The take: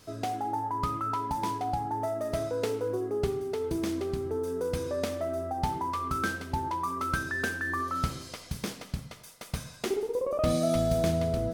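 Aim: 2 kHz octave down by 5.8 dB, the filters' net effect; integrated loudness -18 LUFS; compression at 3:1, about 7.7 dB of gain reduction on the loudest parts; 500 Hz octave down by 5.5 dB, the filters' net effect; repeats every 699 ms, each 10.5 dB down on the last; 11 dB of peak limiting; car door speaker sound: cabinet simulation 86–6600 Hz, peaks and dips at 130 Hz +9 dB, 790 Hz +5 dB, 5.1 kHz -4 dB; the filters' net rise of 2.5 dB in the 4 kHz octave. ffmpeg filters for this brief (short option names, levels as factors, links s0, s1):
-af "equalizer=f=500:t=o:g=-8.5,equalizer=f=2000:t=o:g=-8.5,equalizer=f=4000:t=o:g=7,acompressor=threshold=0.0158:ratio=3,alimiter=level_in=2.11:limit=0.0631:level=0:latency=1,volume=0.473,highpass=86,equalizer=f=130:t=q:w=4:g=9,equalizer=f=790:t=q:w=4:g=5,equalizer=f=5100:t=q:w=4:g=-4,lowpass=f=6600:w=0.5412,lowpass=f=6600:w=1.3066,aecho=1:1:699|1398|2097:0.299|0.0896|0.0269,volume=11.2"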